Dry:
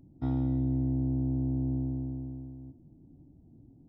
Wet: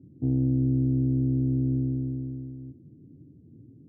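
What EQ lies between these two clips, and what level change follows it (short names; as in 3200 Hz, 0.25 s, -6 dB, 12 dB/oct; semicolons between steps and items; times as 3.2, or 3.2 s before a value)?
HPF 100 Hz 24 dB/oct; ladder low-pass 520 Hz, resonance 55%; tilt -4.5 dB/oct; +3.0 dB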